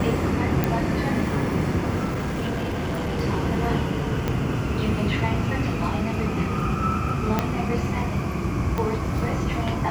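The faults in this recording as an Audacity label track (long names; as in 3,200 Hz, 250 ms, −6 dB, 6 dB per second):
0.640000	0.640000	click −8 dBFS
2.040000	3.190000	clipping −23 dBFS
4.280000	4.280000	click −11 dBFS
7.390000	7.390000	click −7 dBFS
8.780000	8.780000	click −13 dBFS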